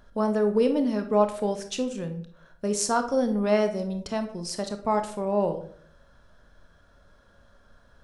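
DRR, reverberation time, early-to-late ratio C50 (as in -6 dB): 7.0 dB, 0.55 s, 11.0 dB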